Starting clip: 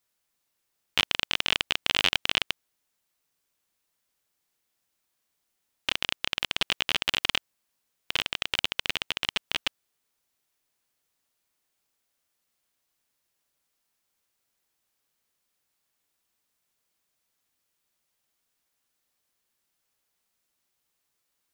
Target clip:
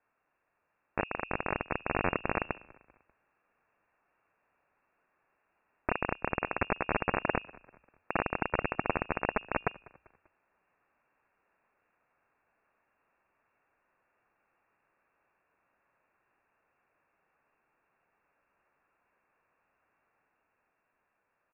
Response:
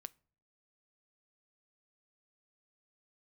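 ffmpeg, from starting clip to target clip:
-filter_complex "[0:a]equalizer=f=740:t=o:w=0.33:g=-7.5,bandreject=f=109.5:t=h:w=4,bandreject=f=219:t=h:w=4,bandreject=f=328.5:t=h:w=4,acrossover=split=310|910[a][b][c];[c]acontrast=60[d];[a][b][d]amix=inputs=3:normalize=0,alimiter=limit=-12dB:level=0:latency=1:release=17,lowpass=f=2.4k:t=q:w=0.5098,lowpass=f=2.4k:t=q:w=0.6013,lowpass=f=2.4k:t=q:w=0.9,lowpass=f=2.4k:t=q:w=2.563,afreqshift=-2800,asplit=4[e][f][g][h];[f]adelay=196,afreqshift=-31,volume=-23dB[i];[g]adelay=392,afreqshift=-62,volume=-29.9dB[j];[h]adelay=588,afreqshift=-93,volume=-36.9dB[k];[e][i][j][k]amix=inputs=4:normalize=0,dynaudnorm=f=170:g=21:m=3dB,volume=4dB"

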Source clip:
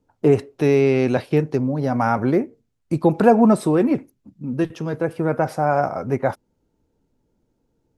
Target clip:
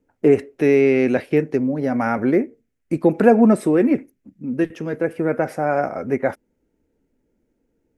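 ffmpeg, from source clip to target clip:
-af "equalizer=f=125:t=o:w=1:g=-7,equalizer=f=250:t=o:w=1:g=4,equalizer=f=500:t=o:w=1:g=3,equalizer=f=1k:t=o:w=1:g=-7,equalizer=f=2k:t=o:w=1:g=9,equalizer=f=4k:t=o:w=1:g=-7,volume=-1dB"

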